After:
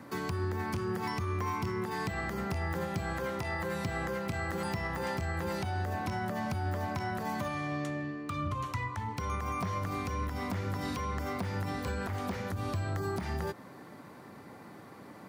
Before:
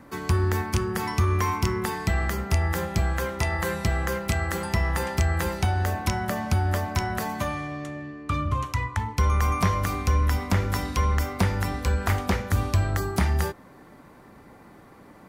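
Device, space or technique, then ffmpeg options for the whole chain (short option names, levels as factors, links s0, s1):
broadcast voice chain: -af "highpass=f=92:w=0.5412,highpass=f=92:w=1.3066,deesser=0.95,acompressor=threshold=0.0398:ratio=4,equalizer=f=4500:t=o:w=0.59:g=3,alimiter=level_in=1.06:limit=0.0631:level=0:latency=1:release=180,volume=0.944"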